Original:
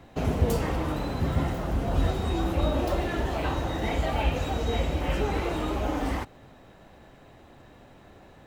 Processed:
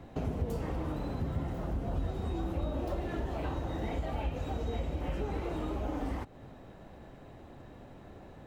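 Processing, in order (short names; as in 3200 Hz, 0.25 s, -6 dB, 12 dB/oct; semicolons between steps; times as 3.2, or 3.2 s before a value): tilt shelf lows +4 dB; compressor 2.5:1, threshold -34 dBFS, peak gain reduction 13.5 dB; gain -1.5 dB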